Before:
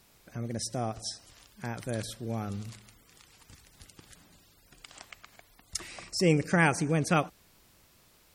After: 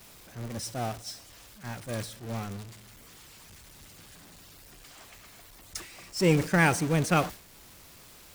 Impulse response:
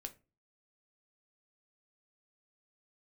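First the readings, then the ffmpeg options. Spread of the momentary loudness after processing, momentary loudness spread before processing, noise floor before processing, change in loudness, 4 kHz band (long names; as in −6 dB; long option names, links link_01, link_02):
24 LU, 21 LU, −62 dBFS, +1.5 dB, +0.5 dB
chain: -af "aeval=exprs='val(0)+0.5*0.0376*sgn(val(0))':channel_layout=same,acompressor=mode=upward:threshold=-32dB:ratio=2.5,agate=range=-33dB:threshold=-23dB:ratio=3:detection=peak"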